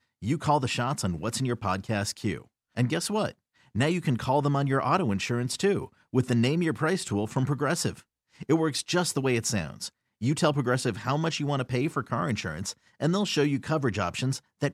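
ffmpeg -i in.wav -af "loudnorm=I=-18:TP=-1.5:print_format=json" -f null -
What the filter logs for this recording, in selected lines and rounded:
"input_i" : "-27.9",
"input_tp" : "-10.5",
"input_lra" : "1.8",
"input_thresh" : "-38.1",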